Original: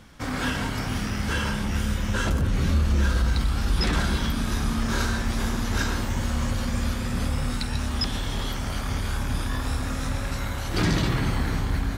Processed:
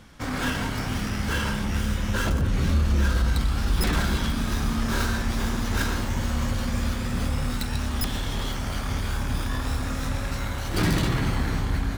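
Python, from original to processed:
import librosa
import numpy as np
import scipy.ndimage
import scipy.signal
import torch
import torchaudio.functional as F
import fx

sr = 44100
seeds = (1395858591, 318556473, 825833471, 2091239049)

y = fx.tracing_dist(x, sr, depth_ms=0.13)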